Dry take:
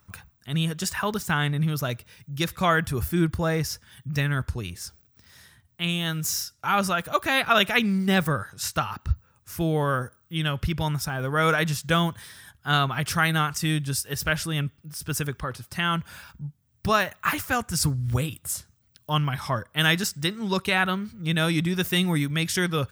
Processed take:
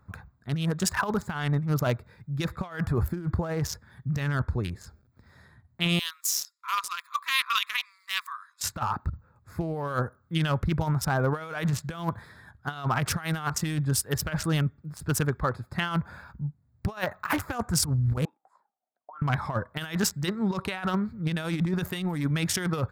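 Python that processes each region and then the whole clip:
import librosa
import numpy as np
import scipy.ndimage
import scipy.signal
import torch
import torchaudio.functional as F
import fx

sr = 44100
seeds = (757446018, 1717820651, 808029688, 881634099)

y = fx.chain(x, sr, fx.brickwall_highpass(low_hz=970.0),
    fx.peak_eq(hz=1500.0, db=-14.5, octaves=0.66), at=(5.99, 8.64))
y = fx.chain(y, sr, fx.auto_wah(base_hz=680.0, top_hz=1400.0, q=16.0, full_db=-20.5, direction='up'),
    fx.highpass(hz=220.0, slope=24),
    fx.over_compress(threshold_db=-45.0, ratio=-1.0), at=(18.25, 19.22))
y = fx.wiener(y, sr, points=15)
y = fx.dynamic_eq(y, sr, hz=880.0, q=0.88, threshold_db=-38.0, ratio=4.0, max_db=5)
y = fx.over_compress(y, sr, threshold_db=-26.0, ratio=-0.5)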